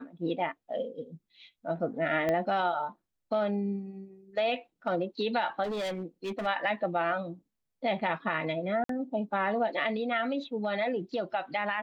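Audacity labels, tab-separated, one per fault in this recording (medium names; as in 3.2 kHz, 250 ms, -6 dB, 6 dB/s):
2.290000	2.290000	pop -17 dBFS
5.630000	6.470000	clipped -30.5 dBFS
8.840000	8.890000	dropout 53 ms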